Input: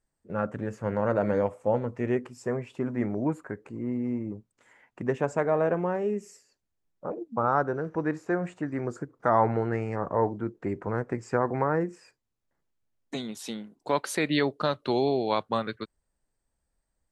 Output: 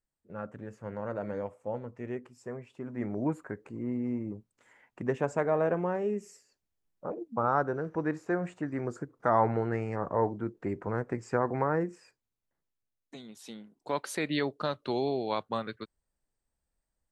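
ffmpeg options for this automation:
-af "volume=5.5dB,afade=t=in:st=2.84:d=0.4:silence=0.421697,afade=t=out:st=11.86:d=1.31:silence=0.298538,afade=t=in:st=13.17:d=0.87:silence=0.398107"

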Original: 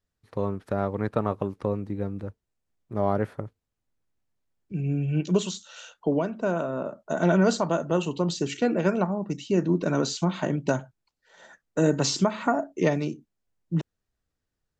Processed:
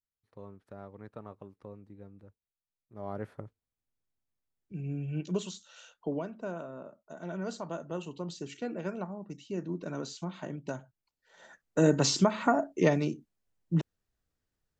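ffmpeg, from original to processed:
-af "volume=9dB,afade=t=in:st=2.93:d=0.45:silence=0.298538,afade=t=out:st=6.08:d=1.13:silence=0.298538,afade=t=in:st=7.21:d=0.52:silence=0.446684,afade=t=in:st=10.77:d=1.07:silence=0.281838"

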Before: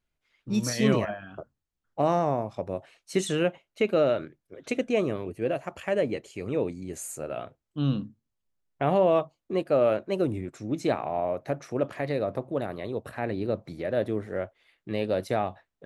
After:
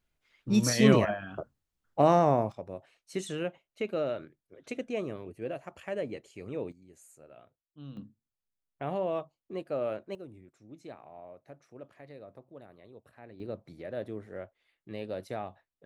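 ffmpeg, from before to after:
-af "asetnsamples=n=441:p=0,asendcmd='2.52 volume volume -8.5dB;6.72 volume volume -19.5dB;7.97 volume volume -10dB;10.15 volume volume -20dB;13.4 volume volume -10dB',volume=2dB"

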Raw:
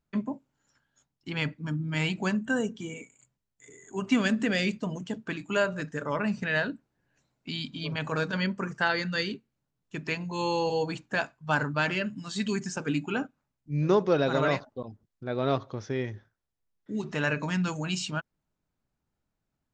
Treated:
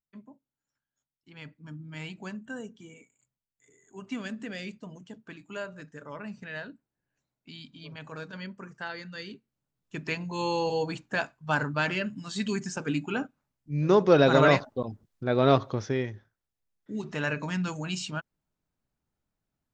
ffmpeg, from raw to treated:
-af "volume=6dB,afade=t=in:st=1.29:d=0.42:silence=0.446684,afade=t=in:st=9.2:d=0.77:silence=0.298538,afade=t=in:st=13.82:d=0.4:silence=0.473151,afade=t=out:st=15.73:d=0.4:silence=0.398107"

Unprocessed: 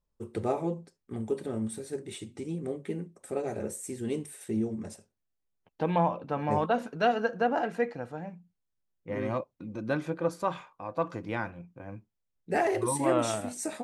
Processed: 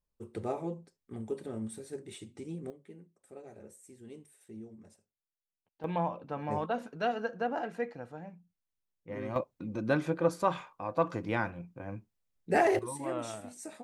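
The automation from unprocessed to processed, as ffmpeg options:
-af "asetnsamples=n=441:p=0,asendcmd='2.7 volume volume -16.5dB;5.84 volume volume -6dB;9.36 volume volume 1.5dB;12.79 volume volume -10dB',volume=-5.5dB"

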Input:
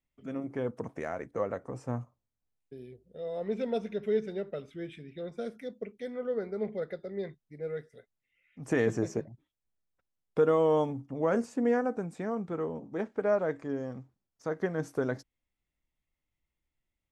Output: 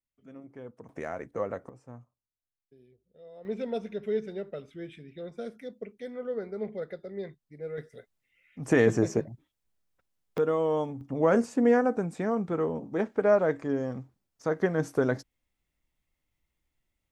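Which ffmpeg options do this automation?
-af "asetnsamples=n=441:p=0,asendcmd='0.89 volume volume 0dB;1.69 volume volume -12.5dB;3.45 volume volume -1dB;7.78 volume volume 5.5dB;10.38 volume volume -2dB;11.01 volume volume 5dB',volume=-11dB"

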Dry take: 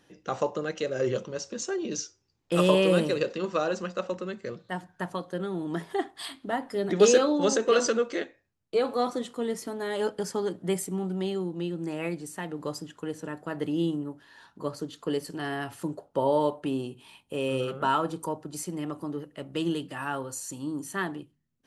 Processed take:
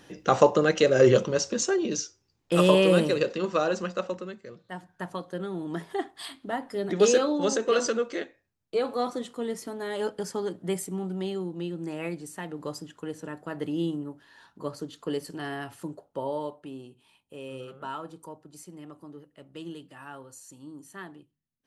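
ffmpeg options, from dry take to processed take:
-af "volume=16.5dB,afade=t=out:st=1.27:d=0.74:silence=0.421697,afade=t=out:st=3.93:d=0.53:silence=0.298538,afade=t=in:st=4.46:d=0.7:silence=0.446684,afade=t=out:st=15.35:d=1.31:silence=0.334965"

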